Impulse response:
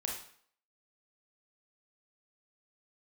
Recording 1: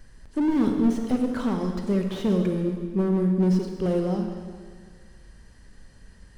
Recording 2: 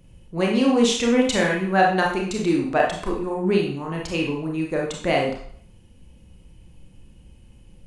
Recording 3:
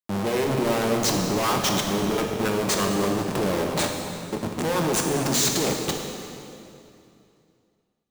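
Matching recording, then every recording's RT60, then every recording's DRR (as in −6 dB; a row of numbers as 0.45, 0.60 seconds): 2; 1.8, 0.55, 2.7 seconds; 3.5, −1.0, 1.5 decibels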